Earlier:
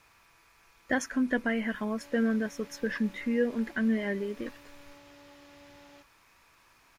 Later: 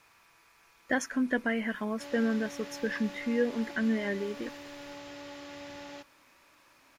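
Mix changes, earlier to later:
background +10.0 dB
master: add low-shelf EQ 87 Hz −11 dB

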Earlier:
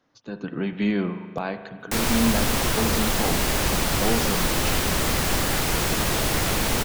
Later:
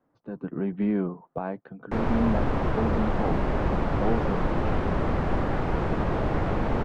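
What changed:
speech: send off
master: add low-pass filter 1,100 Hz 12 dB per octave

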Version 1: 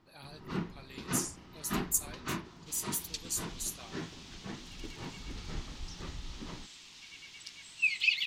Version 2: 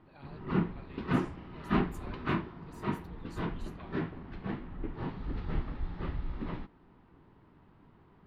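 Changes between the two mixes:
first sound +7.5 dB
second sound: muted
master: add high-frequency loss of the air 460 metres

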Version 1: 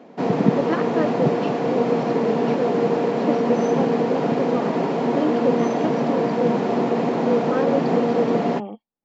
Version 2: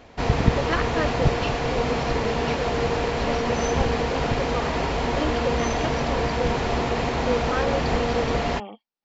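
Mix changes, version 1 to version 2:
background: remove Butterworth high-pass 170 Hz 36 dB per octave
master: add tilt shelving filter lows −9 dB, about 940 Hz

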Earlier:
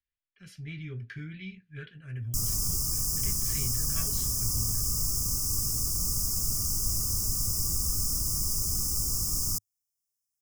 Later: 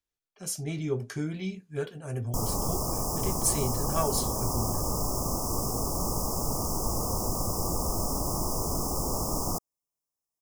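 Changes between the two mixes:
speech: remove high-frequency loss of the air 420 metres
master: remove drawn EQ curve 100 Hz 0 dB, 880 Hz −26 dB, 1,700 Hz +5 dB

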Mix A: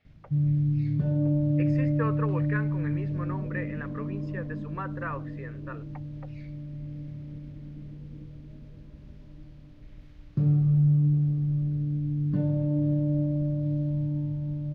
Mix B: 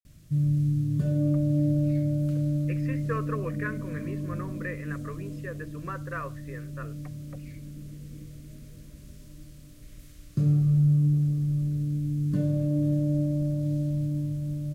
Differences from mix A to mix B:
speech: entry +1.10 s
first sound: remove high-frequency loss of the air 290 metres
master: add Butterworth band-reject 850 Hz, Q 3.1

